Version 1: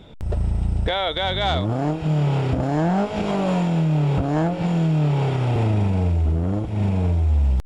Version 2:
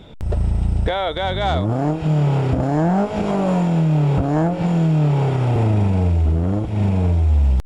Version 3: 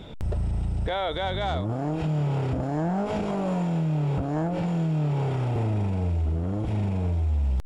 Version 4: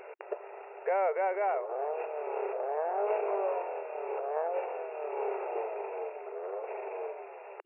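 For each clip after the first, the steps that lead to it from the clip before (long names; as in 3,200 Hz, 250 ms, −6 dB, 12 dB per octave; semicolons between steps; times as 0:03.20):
dynamic equaliser 3,400 Hz, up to −7 dB, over −40 dBFS, Q 0.78; level +3 dB
brickwall limiter −20 dBFS, peak gain reduction 10 dB
dynamic equaliser 1,700 Hz, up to −7 dB, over −45 dBFS, Q 0.84; linear-phase brick-wall band-pass 370–2,800 Hz; level +2 dB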